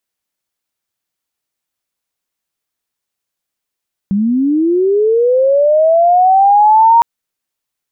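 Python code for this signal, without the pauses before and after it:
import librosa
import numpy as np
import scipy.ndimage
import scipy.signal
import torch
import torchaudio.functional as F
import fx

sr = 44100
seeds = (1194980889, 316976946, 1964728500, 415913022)

y = fx.chirp(sr, length_s=2.91, from_hz=190.0, to_hz=940.0, law='linear', from_db=-10.5, to_db=-4.0)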